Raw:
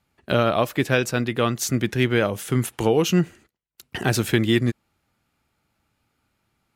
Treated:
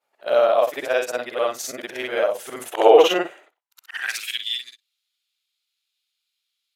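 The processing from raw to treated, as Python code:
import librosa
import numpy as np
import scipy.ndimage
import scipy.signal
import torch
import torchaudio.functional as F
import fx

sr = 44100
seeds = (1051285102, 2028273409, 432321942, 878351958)

y = fx.frame_reverse(x, sr, frame_ms=132.0)
y = fx.filter_sweep_highpass(y, sr, from_hz=600.0, to_hz=3600.0, start_s=3.47, end_s=4.44, q=3.3)
y = fx.spec_box(y, sr, start_s=2.72, length_s=0.88, low_hz=260.0, high_hz=4000.0, gain_db=10)
y = y * 10.0 ** (-1.0 / 20.0)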